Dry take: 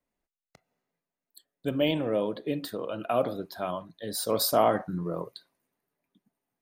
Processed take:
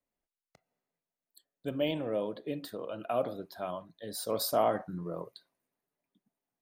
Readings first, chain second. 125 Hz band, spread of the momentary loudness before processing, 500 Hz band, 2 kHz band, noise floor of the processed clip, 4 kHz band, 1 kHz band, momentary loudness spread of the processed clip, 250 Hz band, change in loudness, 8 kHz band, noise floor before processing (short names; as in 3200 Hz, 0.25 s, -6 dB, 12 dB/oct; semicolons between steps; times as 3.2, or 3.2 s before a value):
-6.5 dB, 11 LU, -4.5 dB, -6.5 dB, under -85 dBFS, -6.5 dB, -5.0 dB, 13 LU, -6.5 dB, -5.0 dB, -6.5 dB, under -85 dBFS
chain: bell 630 Hz +2.5 dB; gain -6.5 dB